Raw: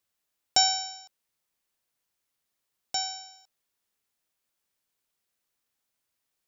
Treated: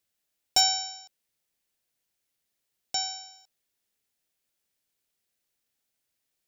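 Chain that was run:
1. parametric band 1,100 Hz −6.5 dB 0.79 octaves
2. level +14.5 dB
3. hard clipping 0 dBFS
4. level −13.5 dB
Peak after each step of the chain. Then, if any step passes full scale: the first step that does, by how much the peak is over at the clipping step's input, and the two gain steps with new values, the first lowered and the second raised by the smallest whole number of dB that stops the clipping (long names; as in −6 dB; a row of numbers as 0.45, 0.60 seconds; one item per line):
−8.0, +6.5, 0.0, −13.5 dBFS
step 2, 6.5 dB
step 2 +7.5 dB, step 4 −6.5 dB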